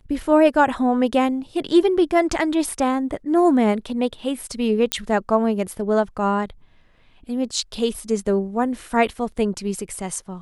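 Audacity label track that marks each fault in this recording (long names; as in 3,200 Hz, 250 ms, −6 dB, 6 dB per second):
4.920000	4.920000	click −2 dBFS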